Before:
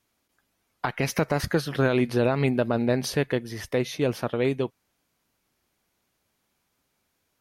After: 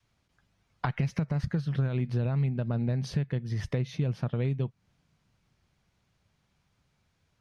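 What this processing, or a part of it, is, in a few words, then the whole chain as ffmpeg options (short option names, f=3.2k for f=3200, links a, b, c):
jukebox: -af "adynamicequalizer=threshold=0.0141:dfrequency=180:dqfactor=0.9:tfrequency=180:tqfactor=0.9:attack=5:release=100:ratio=0.375:range=3.5:mode=boostabove:tftype=bell,lowpass=5.9k,lowshelf=f=200:t=q:w=1.5:g=9.5,acompressor=threshold=-27dB:ratio=6"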